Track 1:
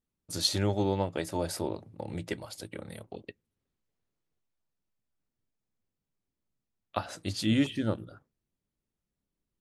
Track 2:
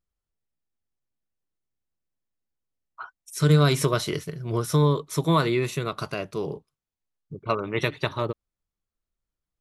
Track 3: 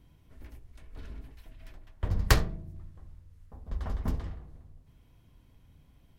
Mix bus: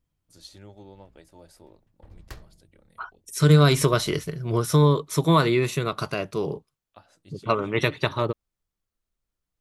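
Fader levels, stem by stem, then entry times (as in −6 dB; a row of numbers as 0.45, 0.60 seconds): −18.5, +2.5, −19.5 decibels; 0.00, 0.00, 0.00 seconds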